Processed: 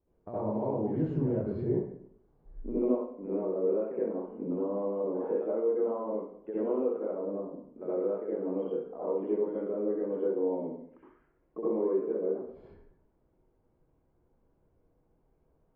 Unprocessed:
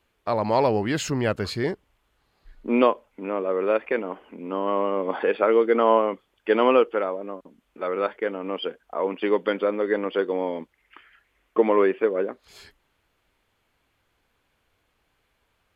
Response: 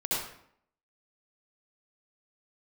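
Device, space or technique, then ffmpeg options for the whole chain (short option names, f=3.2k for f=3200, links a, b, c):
television next door: -filter_complex "[0:a]acompressor=threshold=-31dB:ratio=4,lowpass=470[a];[1:a]atrim=start_sample=2205[b];[a][b]afir=irnorm=-1:irlink=0,volume=-3dB"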